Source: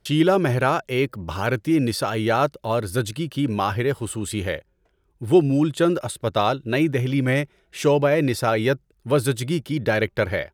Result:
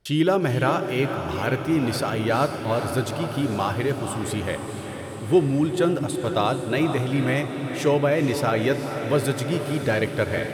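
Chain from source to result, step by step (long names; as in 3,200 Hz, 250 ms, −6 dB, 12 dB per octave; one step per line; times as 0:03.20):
feedback delay with all-pass diffusion 477 ms, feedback 67%, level −8 dB
on a send at −15.5 dB: convolution reverb RT60 1.2 s, pre-delay 3 ms
on the sum: level −2.5 dB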